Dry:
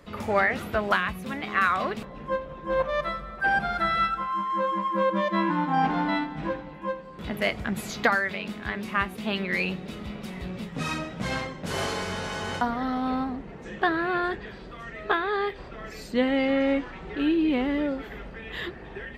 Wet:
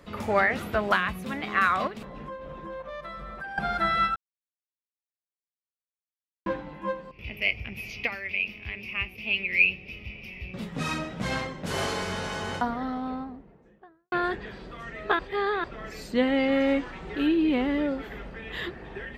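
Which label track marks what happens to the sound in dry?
1.870000	3.580000	compression 16:1, threshold -34 dBFS
4.160000	6.460000	mute
7.110000	10.540000	FFT filter 110 Hz 0 dB, 170 Hz -14 dB, 430 Hz -10 dB, 1.6 kHz -19 dB, 2.5 kHz +13 dB, 3.8 kHz -15 dB, 5.4 kHz -2 dB, 7.8 kHz -30 dB, 12 kHz -7 dB
12.210000	14.120000	studio fade out
15.190000	15.640000	reverse
16.520000	17.270000	treble shelf 7.3 kHz +9 dB

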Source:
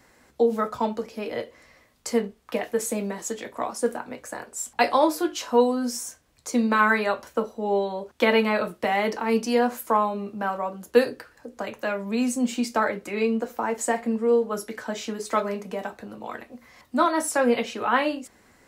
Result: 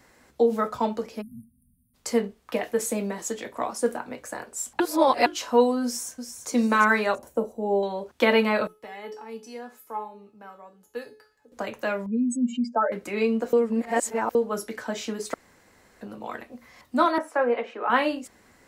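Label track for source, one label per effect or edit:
1.210000	1.950000	spectral selection erased 260–8600 Hz
4.800000	5.260000	reverse
5.840000	6.500000	echo throw 340 ms, feedback 30%, level -8 dB
7.150000	7.830000	high-order bell 2.5 kHz -12.5 dB 2.7 oct
8.670000	11.520000	feedback comb 430 Hz, decay 0.35 s, mix 90%
12.060000	12.920000	spectral contrast enhancement exponent 2.5
13.530000	14.350000	reverse
15.340000	16.010000	room tone
17.180000	17.900000	three-band isolator lows -23 dB, under 310 Hz, highs -23 dB, over 2.2 kHz

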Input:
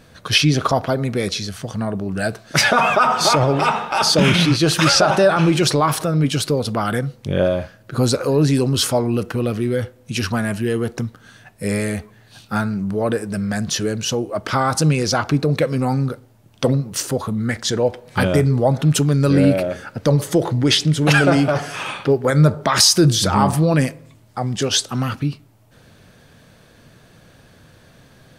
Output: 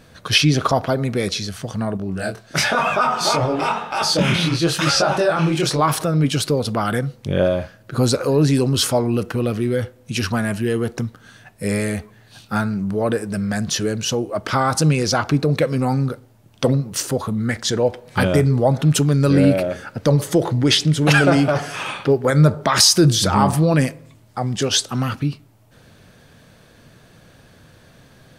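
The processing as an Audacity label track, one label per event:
1.970000	5.790000	chorus 1 Hz, delay 20 ms, depth 5.3 ms

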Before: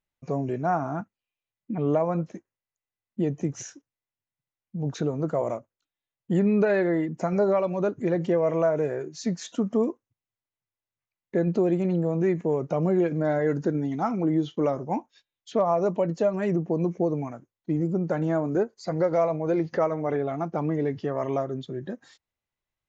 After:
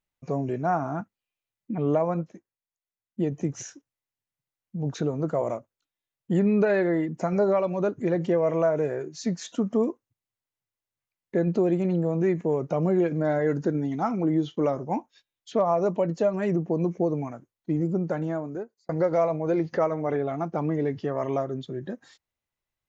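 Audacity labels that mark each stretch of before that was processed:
2.140000	3.320000	upward expansion, over -36 dBFS
17.970000	18.890000	fade out linear

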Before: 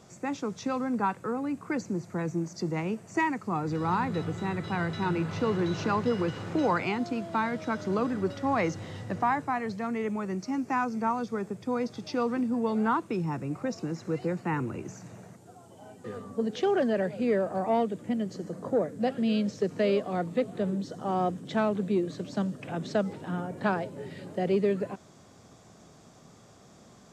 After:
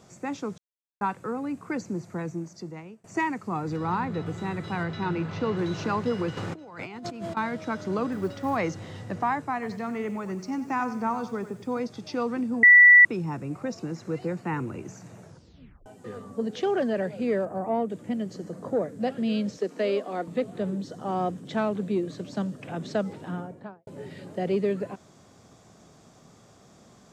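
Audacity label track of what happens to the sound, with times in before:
0.580000	1.010000	mute
2.090000	3.040000	fade out, to -23 dB
3.760000	4.250000	low-pass 5.8 kHz -> 3.1 kHz 6 dB/octave
4.830000	5.570000	low-pass 5.4 kHz
6.370000	7.370000	compressor with a negative ratio -38 dBFS
8.120000	8.570000	short-mantissa float mantissa of 4-bit
9.530000	11.800000	bit-crushed delay 92 ms, feedback 35%, word length 9-bit, level -12 dB
12.630000	13.050000	bleep 1.96 kHz -9.5 dBFS
15.210000	15.210000	tape stop 0.65 s
17.450000	17.900000	peaking EQ 4.1 kHz -12 dB 2.2 oct
19.570000	20.280000	high-pass 230 Hz 24 dB/octave
23.240000	23.870000	studio fade out

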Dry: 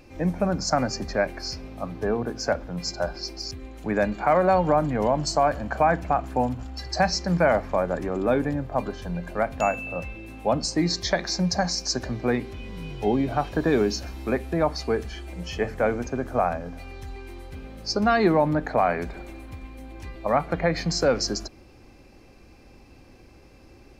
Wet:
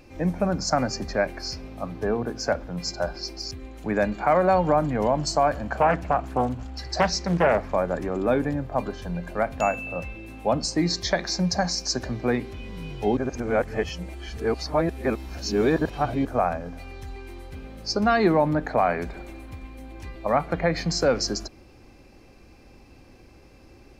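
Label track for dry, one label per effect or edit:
5.760000	7.700000	loudspeaker Doppler distortion depth 0.52 ms
13.170000	16.250000	reverse

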